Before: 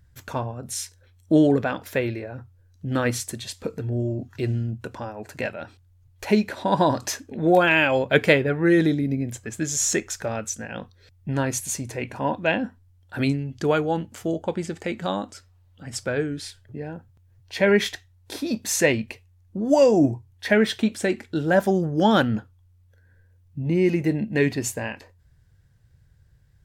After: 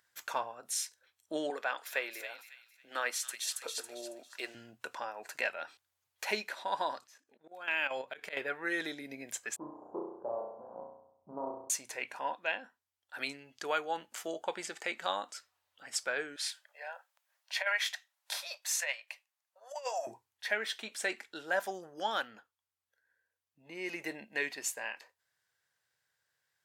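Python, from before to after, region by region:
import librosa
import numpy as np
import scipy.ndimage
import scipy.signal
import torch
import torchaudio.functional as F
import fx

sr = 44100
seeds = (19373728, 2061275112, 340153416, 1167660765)

y = fx.chain(x, sr, fx.highpass(hz=360.0, slope=12),
    fx.echo_wet_highpass(ms=276, feedback_pct=31, hz=3200.0, wet_db=-3.0), at=(1.5, 4.55))
y = fx.chain(y, sr, fx.auto_swell(attack_ms=262.0),
    fx.low_shelf(hz=270.0, db=7.0),
    fx.level_steps(step_db=10), at=(6.99, 8.37))
y = fx.chain(y, sr, fx.median_filter(points=41),
    fx.ellip_lowpass(hz=1000.0, order=4, stop_db=50),
    fx.room_flutter(wall_m=5.7, rt60_s=0.75), at=(9.56, 11.7))
y = fx.chain(y, sr, fx.ellip_highpass(hz=560.0, order=4, stop_db=40),
    fx.over_compress(threshold_db=-22.0, ratio=-0.5), at=(16.36, 20.07))
y = scipy.signal.sosfilt(scipy.signal.butter(2, 870.0, 'highpass', fs=sr, output='sos'), y)
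y = fx.rider(y, sr, range_db=5, speed_s=0.5)
y = y * 10.0 ** (-5.5 / 20.0)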